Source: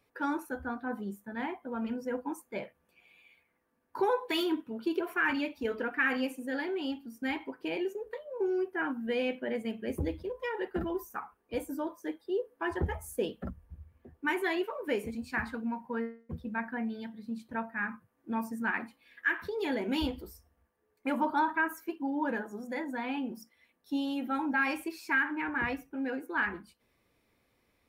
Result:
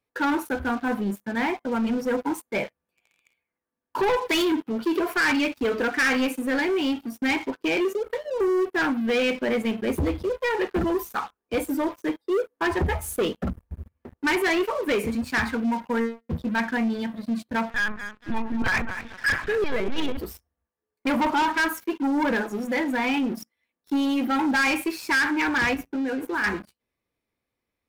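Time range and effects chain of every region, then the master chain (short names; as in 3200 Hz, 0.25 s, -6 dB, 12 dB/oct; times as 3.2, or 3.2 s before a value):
17.7–20.17 LPC vocoder at 8 kHz pitch kept + feedback echo 0.23 s, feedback 34%, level -13.5 dB
25.74–26.44 low shelf 200 Hz +7.5 dB + compressor 4:1, threshold -36 dBFS + notches 60/120/180/240/300/360/420 Hz
whole clip: sample leveller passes 2; dynamic EQ 2300 Hz, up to +5 dB, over -44 dBFS, Q 3.2; sample leveller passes 2; gain -3 dB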